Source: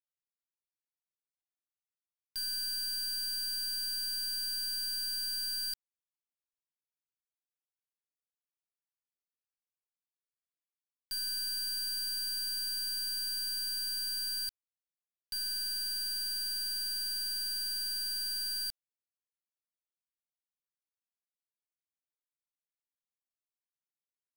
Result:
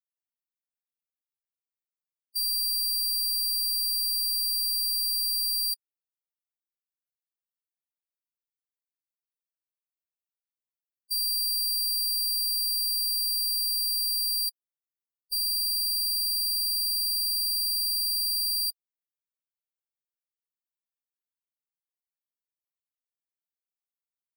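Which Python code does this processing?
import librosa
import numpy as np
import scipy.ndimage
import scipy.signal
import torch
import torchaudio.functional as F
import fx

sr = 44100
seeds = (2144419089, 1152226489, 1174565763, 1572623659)

y = fx.high_shelf(x, sr, hz=6800.0, db=8.5)
y = fx.spec_topn(y, sr, count=16)
y = y * librosa.db_to_amplitude(4.5)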